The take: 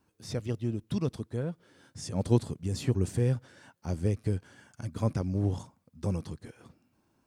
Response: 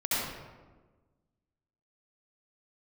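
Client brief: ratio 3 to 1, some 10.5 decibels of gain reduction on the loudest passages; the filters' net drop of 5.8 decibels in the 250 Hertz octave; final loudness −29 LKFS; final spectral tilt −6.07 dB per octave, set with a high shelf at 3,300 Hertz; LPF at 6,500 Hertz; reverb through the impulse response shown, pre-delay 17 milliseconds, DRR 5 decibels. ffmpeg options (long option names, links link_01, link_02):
-filter_complex "[0:a]lowpass=6500,equalizer=frequency=250:width_type=o:gain=-8.5,highshelf=frequency=3300:gain=3.5,acompressor=threshold=-36dB:ratio=3,asplit=2[link_01][link_02];[1:a]atrim=start_sample=2205,adelay=17[link_03];[link_02][link_03]afir=irnorm=-1:irlink=0,volume=-15dB[link_04];[link_01][link_04]amix=inputs=2:normalize=0,volume=10.5dB"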